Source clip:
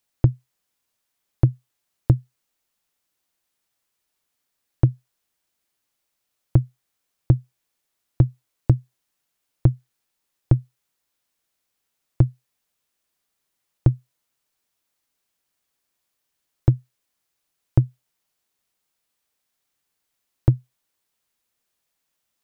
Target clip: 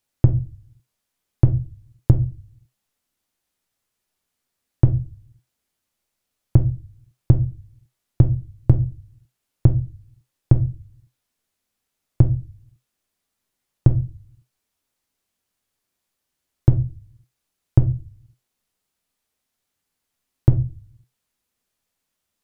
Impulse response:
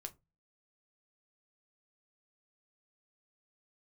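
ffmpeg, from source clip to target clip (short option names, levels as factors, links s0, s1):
-filter_complex "[0:a]asplit=2[s0][s1];[1:a]atrim=start_sample=2205,asetrate=26901,aresample=44100,lowshelf=f=380:g=7[s2];[s1][s2]afir=irnorm=-1:irlink=0,volume=2.82[s3];[s0][s3]amix=inputs=2:normalize=0,volume=0.282"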